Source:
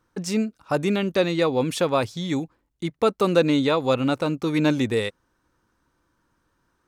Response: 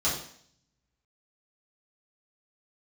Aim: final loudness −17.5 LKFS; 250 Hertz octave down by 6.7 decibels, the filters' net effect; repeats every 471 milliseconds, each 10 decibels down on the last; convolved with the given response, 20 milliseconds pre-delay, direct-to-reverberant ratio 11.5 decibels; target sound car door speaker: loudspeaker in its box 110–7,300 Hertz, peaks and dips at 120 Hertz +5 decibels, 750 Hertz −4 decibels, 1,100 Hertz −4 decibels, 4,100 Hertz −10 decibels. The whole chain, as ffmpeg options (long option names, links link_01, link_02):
-filter_complex "[0:a]equalizer=frequency=250:width_type=o:gain=-9,aecho=1:1:471|942|1413|1884:0.316|0.101|0.0324|0.0104,asplit=2[link_01][link_02];[1:a]atrim=start_sample=2205,adelay=20[link_03];[link_02][link_03]afir=irnorm=-1:irlink=0,volume=-21.5dB[link_04];[link_01][link_04]amix=inputs=2:normalize=0,highpass=110,equalizer=frequency=120:width_type=q:width=4:gain=5,equalizer=frequency=750:width_type=q:width=4:gain=-4,equalizer=frequency=1100:width_type=q:width=4:gain=-4,equalizer=frequency=4100:width_type=q:width=4:gain=-10,lowpass=frequency=7300:width=0.5412,lowpass=frequency=7300:width=1.3066,volume=9dB"